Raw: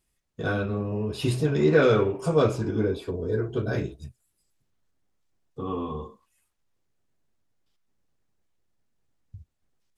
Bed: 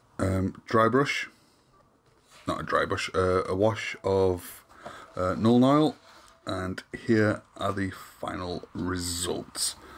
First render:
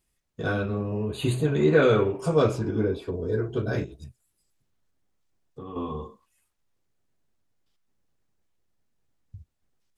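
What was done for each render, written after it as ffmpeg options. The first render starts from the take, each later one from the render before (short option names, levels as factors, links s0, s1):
-filter_complex "[0:a]asettb=1/sr,asplit=3[s0][s1][s2];[s0]atrim=end=1.064[s3];[s1]atrim=start=1.06:end=2.06,asetpts=PTS-STARTPTS,afade=t=in:d=0.004:c=qsin,afade=t=out:st=0.996:d=0.004:c=qsin,asuperstop=centerf=5400:order=20:qfactor=3.8[s4];[s2]atrim=start=2.056[s5];[s3][s4]acrossfade=d=0.004:c1=hsin:c2=qsin[s6];[s6][s5]acrossfade=d=0.004:c1=qsin:c2=hsin,asettb=1/sr,asplit=3[s7][s8][s9];[s7]atrim=end=2.594[s10];[s8]atrim=start=2.59:end=3.13,asetpts=PTS-STARTPTS,afade=t=in:d=0.004:c=qsin,afade=t=out:st=0.536:d=0.004:c=qsin,highshelf=f=4000:g=-6.5[s11];[s9]atrim=start=3.126[s12];[s10][s11]acrossfade=d=0.004:c1=hsin:c2=qsin[s13];[s13][s12]acrossfade=d=0.004:c1=qsin:c2=hsin,asettb=1/sr,asplit=3[s14][s15][s16];[s14]atrim=end=3.844[s17];[s15]atrim=start=3.84:end=5.76,asetpts=PTS-STARTPTS,afade=t=in:d=0.004:c=qsin,afade=t=out:st=1.916:d=0.004:c=qsin,acompressor=threshold=0.0158:ratio=4:attack=3.2:release=140:knee=1:detection=peak[s18];[s16]atrim=start=5.756[s19];[s17][s18]acrossfade=d=0.004:c1=hsin:c2=qsin[s20];[s20][s19]acrossfade=d=0.004:c1=qsin:c2=hsin"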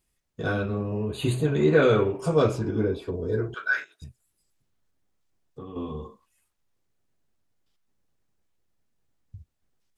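-filter_complex "[0:a]asettb=1/sr,asplit=3[s0][s1][s2];[s0]atrim=end=3.544[s3];[s1]atrim=start=3.54:end=4.02,asetpts=PTS-STARTPTS,afade=t=in:d=0.004:c=qsin,afade=t=out:st=0.476:d=0.004:c=qsin,highpass=f=1500:t=q:w=5.7[s4];[s2]atrim=start=4.016[s5];[s3][s4]acrossfade=d=0.004:c1=hsin:c2=qsin[s6];[s6][s5]acrossfade=d=0.004:c1=qsin:c2=hsin,asettb=1/sr,asplit=3[s7][s8][s9];[s7]atrim=end=5.654[s10];[s8]atrim=start=5.65:end=6.05,asetpts=PTS-STARTPTS,afade=t=in:d=0.004:c=qsin,afade=t=out:st=0.396:d=0.004:c=qsin,equalizer=f=1100:w=0.84:g=-6.5[s11];[s9]atrim=start=6.046[s12];[s10][s11]acrossfade=d=0.004:c1=hsin:c2=qsin[s13];[s13][s12]acrossfade=d=0.004:c1=qsin:c2=hsin"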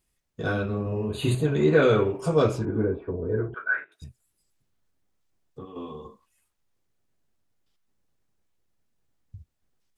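-filter_complex "[0:a]asettb=1/sr,asplit=3[s0][s1][s2];[s0]atrim=end=0.824[s3];[s1]atrim=start=0.82:end=1.35,asetpts=PTS-STARTPTS,afade=t=in:d=0.004:c=qsin,afade=t=out:st=0.526:d=0.004:c=qsin,asplit=2[s4][s5];[s5]adelay=41,volume=0.501[s6];[s4][s6]amix=inputs=2:normalize=0,atrim=end_sample=23373[s7];[s2]atrim=start=1.346[s8];[s3][s7]acrossfade=d=0.004:c1=hsin:c2=qsin[s9];[s9][s8]acrossfade=d=0.004:c1=qsin:c2=hsin,asettb=1/sr,asplit=3[s10][s11][s12];[s10]atrim=end=2.654[s13];[s11]atrim=start=2.65:end=3.92,asetpts=PTS-STARTPTS,afade=t=in:d=0.004:c=qsin,afade=t=out:st=1.266:d=0.004:c=qsin,lowpass=f=1900:w=0.5412,lowpass=f=1900:w=1.3066[s14];[s12]atrim=start=3.916[s15];[s13][s14]acrossfade=d=0.004:c1=hsin:c2=qsin[s16];[s16][s15]acrossfade=d=0.004:c1=qsin:c2=hsin,asettb=1/sr,asplit=3[s17][s18][s19];[s17]atrim=end=5.654[s20];[s18]atrim=start=5.65:end=6.05,asetpts=PTS-STARTPTS,afade=t=in:d=0.004:c=qsin,afade=t=out:st=0.396:d=0.004:c=qsin,highpass=f=370:p=1[s21];[s19]atrim=start=6.046[s22];[s20][s21]acrossfade=d=0.004:c1=hsin:c2=qsin[s23];[s23][s22]acrossfade=d=0.004:c1=qsin:c2=hsin"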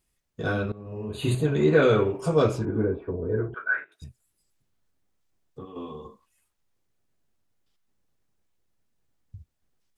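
-filter_complex "[0:a]asplit=2[s0][s1];[s0]atrim=end=0.72,asetpts=PTS-STARTPTS,afade=t=out:st=0.716:d=0.004:c=hsin:silence=0.105925[s2];[s1]atrim=start=0.72,asetpts=PTS-STARTPTS,afade=t=in:d=0.64:silence=0.105925[s3];[s2][s3]concat=n=2:v=0:a=1"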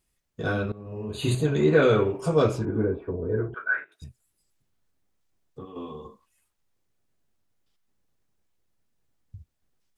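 -filter_complex "[0:a]asettb=1/sr,asplit=3[s0][s1][s2];[s0]atrim=end=1.094[s3];[s1]atrim=start=1.09:end=1.61,asetpts=PTS-STARTPTS,afade=t=in:d=0.004:c=qsin,afade=t=out:st=0.516:d=0.004:c=qsin,equalizer=f=5600:t=o:w=0.76:g=8[s4];[s2]atrim=start=1.606[s5];[s3][s4]acrossfade=d=0.004:c1=hsin:c2=qsin[s6];[s6][s5]acrossfade=d=0.004:c1=qsin:c2=hsin"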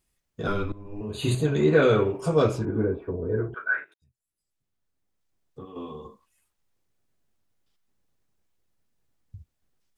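-filter_complex "[0:a]asettb=1/sr,asplit=3[s0][s1][s2];[s0]atrim=end=0.474[s3];[s1]atrim=start=0.47:end=1.01,asetpts=PTS-STARTPTS,afade=t=in:d=0.004:c=qsin,afade=t=out:st=0.536:d=0.004:c=qsin,afreqshift=-110[s4];[s2]atrim=start=1.006[s5];[s3][s4]acrossfade=d=0.004:c1=hsin:c2=qsin[s6];[s6][s5]acrossfade=d=0.004:c1=qsin:c2=hsin,asplit=2[s7][s8];[s7]atrim=end=3.94,asetpts=PTS-STARTPTS,afade=t=out:st=3.936:d=0.004:c=hsin[s9];[s8]atrim=start=3.94,asetpts=PTS-STARTPTS,afade=t=in:d=1.86[s10];[s9][s10]concat=n=2:v=0:a=1"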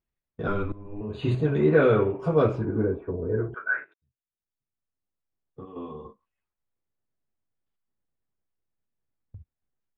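-af "agate=range=0.316:threshold=0.00562:ratio=16:detection=peak,lowpass=2200"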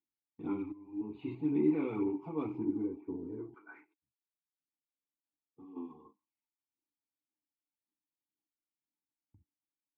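-filter_complex "[0:a]asplit=3[s0][s1][s2];[s0]bandpass=f=300:t=q:w=8,volume=1[s3];[s1]bandpass=f=870:t=q:w=8,volume=0.501[s4];[s2]bandpass=f=2240:t=q:w=8,volume=0.355[s5];[s3][s4][s5]amix=inputs=3:normalize=0,aphaser=in_gain=1:out_gain=1:delay=1.9:decay=0.4:speed=1.9:type=sinusoidal"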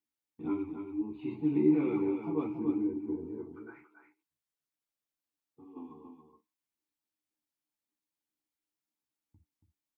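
-filter_complex "[0:a]asplit=2[s0][s1];[s1]adelay=13,volume=0.562[s2];[s0][s2]amix=inputs=2:normalize=0,aecho=1:1:280:0.447"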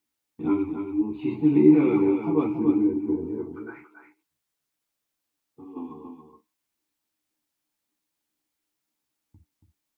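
-af "volume=2.99"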